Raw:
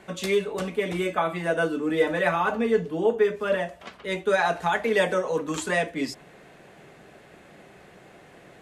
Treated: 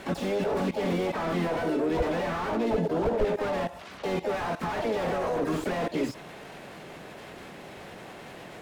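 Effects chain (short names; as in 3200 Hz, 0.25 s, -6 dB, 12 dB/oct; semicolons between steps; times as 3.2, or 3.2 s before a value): level quantiser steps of 18 dB; harmoniser +4 st -8 dB, +7 st -6 dB, +12 st -12 dB; slew limiter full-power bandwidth 13 Hz; gain +8.5 dB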